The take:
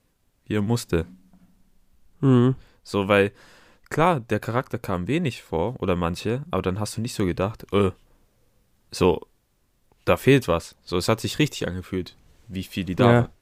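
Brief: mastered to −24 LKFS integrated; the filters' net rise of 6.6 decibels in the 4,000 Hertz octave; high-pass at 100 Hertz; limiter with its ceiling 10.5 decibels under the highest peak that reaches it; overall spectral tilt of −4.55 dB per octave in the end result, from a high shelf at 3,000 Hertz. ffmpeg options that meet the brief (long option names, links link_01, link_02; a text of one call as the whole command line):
ffmpeg -i in.wav -af "highpass=100,highshelf=frequency=3000:gain=7,equalizer=frequency=4000:width_type=o:gain=3,volume=2.5dB,alimiter=limit=-9.5dB:level=0:latency=1" out.wav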